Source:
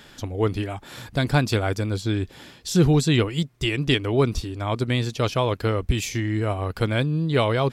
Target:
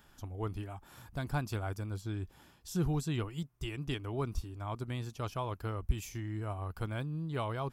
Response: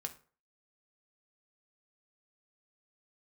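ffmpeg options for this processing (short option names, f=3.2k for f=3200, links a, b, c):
-af "equalizer=f=125:t=o:w=1:g=-6,equalizer=f=250:t=o:w=1:g=-7,equalizer=f=500:t=o:w=1:g=-11,equalizer=f=2k:t=o:w=1:g=-10,equalizer=f=4k:t=o:w=1:g=-12,equalizer=f=8k:t=o:w=1:g=-6,volume=-6dB"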